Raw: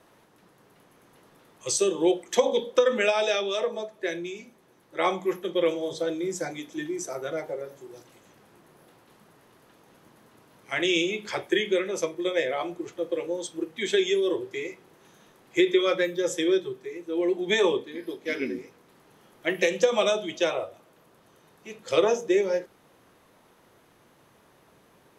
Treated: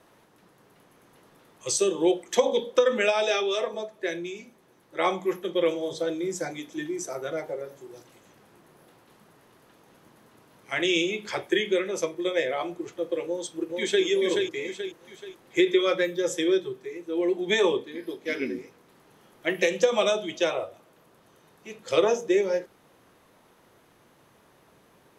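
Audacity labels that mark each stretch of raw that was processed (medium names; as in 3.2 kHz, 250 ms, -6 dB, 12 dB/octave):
3.300000	3.740000	comb 7.4 ms, depth 59%
13.260000	14.050000	echo throw 430 ms, feedback 40%, level -3 dB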